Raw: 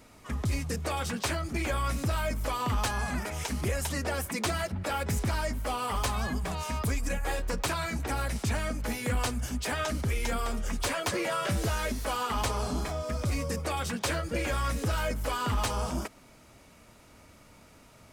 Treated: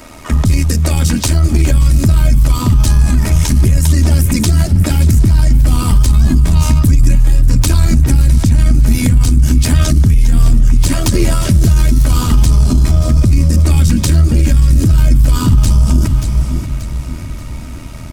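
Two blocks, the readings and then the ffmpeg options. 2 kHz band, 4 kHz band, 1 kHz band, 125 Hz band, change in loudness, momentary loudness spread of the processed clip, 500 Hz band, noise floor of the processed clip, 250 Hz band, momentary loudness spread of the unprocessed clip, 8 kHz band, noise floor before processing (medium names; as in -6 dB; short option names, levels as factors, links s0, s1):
+6.0 dB, +11.5 dB, +4.5 dB, +24.0 dB, +19.5 dB, 5 LU, +7.5 dB, -25 dBFS, +19.0 dB, 3 LU, +15.0 dB, -56 dBFS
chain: -filter_complex "[0:a]asubboost=boost=4:cutoff=240,acrossover=split=330|4100[s0][s1][s2];[s1]acompressor=threshold=0.00562:ratio=5[s3];[s0][s3][s2]amix=inputs=3:normalize=0,aecho=1:1:3.2:0.42,tremolo=f=80:d=0.667,asplit=2[s4][s5];[s5]aecho=0:1:582|1164|1746|2328:0.211|0.093|0.0409|0.018[s6];[s4][s6]amix=inputs=2:normalize=0,alimiter=level_in=13.3:limit=0.891:release=50:level=0:latency=1,volume=0.891"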